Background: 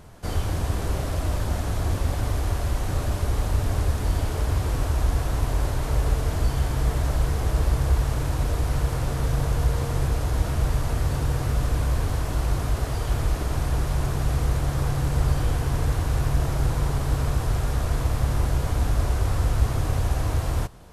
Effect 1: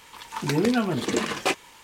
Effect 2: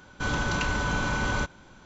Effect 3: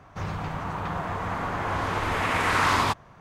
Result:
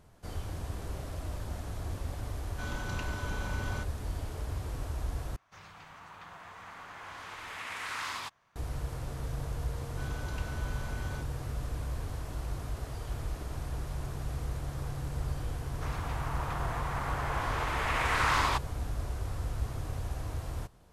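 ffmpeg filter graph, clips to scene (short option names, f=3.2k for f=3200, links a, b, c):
-filter_complex "[2:a]asplit=2[a][b];[3:a]asplit=2[c][d];[0:a]volume=-12.5dB[e];[c]tiltshelf=f=970:g=-8.5[f];[d]highpass=f=500:p=1[g];[e]asplit=2[h][i];[h]atrim=end=5.364[j];[f]atrim=end=3.2,asetpts=PTS-STARTPTS,volume=-17.5dB[k];[i]atrim=start=8.556[l];[a]atrim=end=1.85,asetpts=PTS-STARTPTS,volume=-12dB,afade=t=in:d=0.004:c=hsin,afade=t=out:st=1.846:d=0.004:c=hsin,adelay=2380[m];[b]atrim=end=1.85,asetpts=PTS-STARTPTS,volume=-17dB,afade=t=in:d=0.004:c=hsin,afade=t=out:st=1.846:d=0.004:c=hsin,adelay=9770[n];[g]atrim=end=3.2,asetpts=PTS-STARTPTS,volume=-4.5dB,afade=t=in:d=0.004:c=hsin,afade=t=out:st=3.196:d=0.004:c=hsin,adelay=15650[o];[j][k]acrossfade=d=0.004:c1=hsin:c2=hsin[p];[p][l]acrossfade=d=0.004:c1=hsin:c2=hsin[q];[q][m][n][o]amix=inputs=4:normalize=0"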